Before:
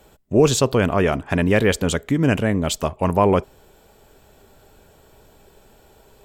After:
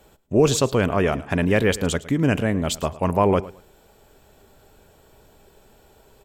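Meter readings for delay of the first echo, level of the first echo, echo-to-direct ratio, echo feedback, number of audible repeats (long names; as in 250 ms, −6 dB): 109 ms, −18.0 dB, −18.0 dB, 23%, 2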